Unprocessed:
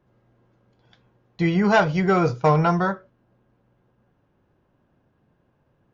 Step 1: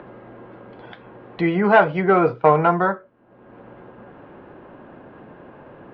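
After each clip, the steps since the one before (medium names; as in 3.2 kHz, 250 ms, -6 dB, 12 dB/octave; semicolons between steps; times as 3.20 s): three-band isolator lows -15 dB, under 230 Hz, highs -20 dB, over 3.7 kHz; upward compressor, threshold -29 dBFS; distance through air 270 m; trim +5.5 dB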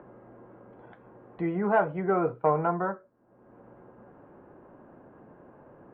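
low-pass 1.4 kHz 12 dB/octave; trim -9 dB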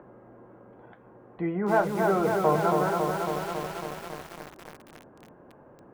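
bit-crushed delay 276 ms, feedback 80%, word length 7-bit, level -3 dB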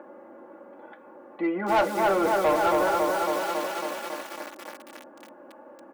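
high-pass 340 Hz 12 dB/octave; comb 3.5 ms, depth 95%; saturation -20 dBFS, distortion -12 dB; trim +3.5 dB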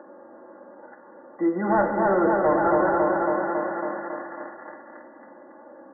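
dynamic bell 190 Hz, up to +6 dB, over -42 dBFS, Q 0.74; brick-wall FIR low-pass 2 kHz; spring tank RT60 2 s, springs 44/59 ms, chirp 20 ms, DRR 5 dB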